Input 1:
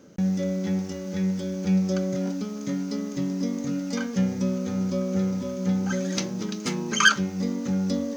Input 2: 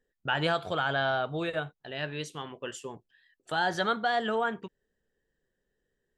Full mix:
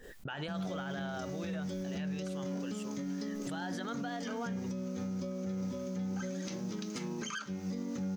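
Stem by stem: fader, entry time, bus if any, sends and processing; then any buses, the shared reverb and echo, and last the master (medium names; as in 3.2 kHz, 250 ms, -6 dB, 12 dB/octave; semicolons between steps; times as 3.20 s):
-5.0 dB, 0.30 s, no send, compression 6:1, threshold -27 dBFS, peak gain reduction 15 dB
-9.5 dB, 0.00 s, no send, swell ahead of each attack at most 61 dB/s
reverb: none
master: peak limiter -30 dBFS, peak gain reduction 10 dB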